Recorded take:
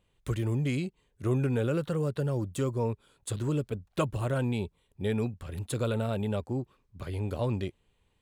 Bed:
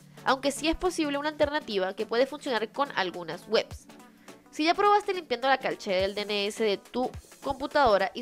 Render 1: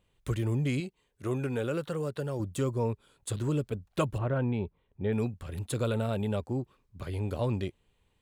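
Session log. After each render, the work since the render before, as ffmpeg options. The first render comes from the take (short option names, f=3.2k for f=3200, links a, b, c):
-filter_complex "[0:a]asettb=1/sr,asplit=3[a][b][c];[a]atrim=end=0.804[d];[b]atrim=start=0.8:end=2.4,asetpts=PTS-STARTPTS,afade=t=in:d=0.004:c=qsin,afade=t=out:st=1.596:d=0.004:c=qsin,lowshelf=f=240:g=-8[e];[c]atrim=start=2.396[f];[d][e]acrossfade=d=0.004:c1=hsin:c2=qsin[g];[g][f]acrossfade=d=0.004:c1=qsin:c2=hsin,asettb=1/sr,asplit=3[h][i][j];[h]atrim=end=4.184[k];[i]atrim=start=4.18:end=5.13,asetpts=PTS-STARTPTS,afade=t=in:d=0.004:c=qsin,afade=t=out:st=0.946:d=0.004:c=qsin,lowpass=2k[l];[j]atrim=start=5.126[m];[k][l]acrossfade=d=0.004:c1=hsin:c2=qsin[n];[n][m]acrossfade=d=0.004:c1=qsin:c2=hsin"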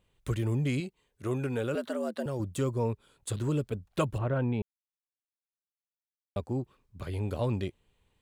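-filter_complex "[0:a]asettb=1/sr,asplit=3[a][b][c];[a]atrim=end=1.754[d];[b]atrim=start=1.75:end=2.26,asetpts=PTS-STARTPTS,afade=t=in:d=0.004:c=qsin,afade=t=out:st=0.506:d=0.004:c=qsin,afreqshift=94[e];[c]atrim=start=2.256[f];[d][e]acrossfade=d=0.004:c1=hsin:c2=qsin[g];[g][f]acrossfade=d=0.004:c1=qsin:c2=hsin,asplit=3[h][i][j];[h]atrim=end=4.62,asetpts=PTS-STARTPTS,afade=t=out:st=4.616:d=0.004:c=hsin[k];[i]atrim=start=4.62:end=6.36,asetpts=PTS-STARTPTS,volume=0[l];[j]atrim=start=6.36,asetpts=PTS-STARTPTS,afade=t=in:d=0.004:c=hsin[m];[k][l][m]concat=n=3:v=0:a=1"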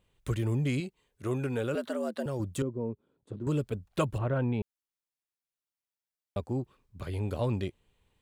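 -filter_complex "[0:a]asettb=1/sr,asplit=3[a][b][c];[a]atrim=end=2.624[d];[b]atrim=start=2.62:end=3.47,asetpts=PTS-STARTPTS,afade=t=in:d=0.004:c=qsin,afade=t=out:st=0.846:d=0.004:c=qsin,bandpass=f=270:t=q:w=1.2[e];[c]atrim=start=3.466[f];[d][e]acrossfade=d=0.004:c1=hsin:c2=qsin[g];[g][f]acrossfade=d=0.004:c1=qsin:c2=hsin"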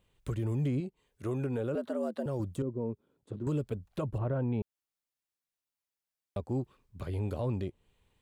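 -filter_complex "[0:a]acrossover=split=1100[a][b];[a]alimiter=level_in=1dB:limit=-24dB:level=0:latency=1:release=77,volume=-1dB[c];[b]acompressor=threshold=-53dB:ratio=12[d];[c][d]amix=inputs=2:normalize=0"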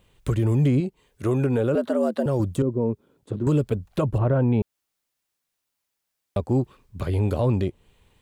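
-af "volume=11dB"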